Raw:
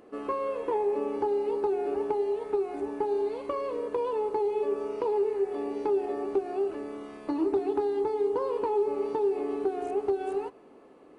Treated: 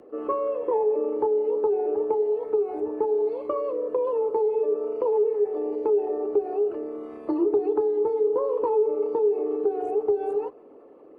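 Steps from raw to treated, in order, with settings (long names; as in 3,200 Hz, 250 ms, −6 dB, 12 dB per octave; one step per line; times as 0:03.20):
spectral envelope exaggerated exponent 1.5
frequency shifter +19 Hz
level +4.5 dB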